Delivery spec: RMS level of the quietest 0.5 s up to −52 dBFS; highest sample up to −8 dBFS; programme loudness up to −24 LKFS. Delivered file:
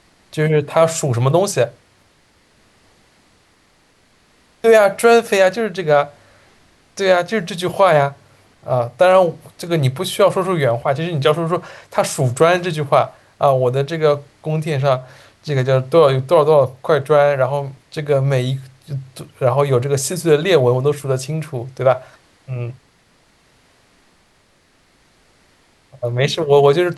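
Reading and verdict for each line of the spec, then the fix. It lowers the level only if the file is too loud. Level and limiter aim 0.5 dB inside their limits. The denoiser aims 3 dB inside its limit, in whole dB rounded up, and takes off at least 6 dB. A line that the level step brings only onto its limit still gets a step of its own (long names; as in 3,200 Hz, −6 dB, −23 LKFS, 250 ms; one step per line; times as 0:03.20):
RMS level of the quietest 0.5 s −56 dBFS: in spec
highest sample −2.0 dBFS: out of spec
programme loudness −16.5 LKFS: out of spec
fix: level −8 dB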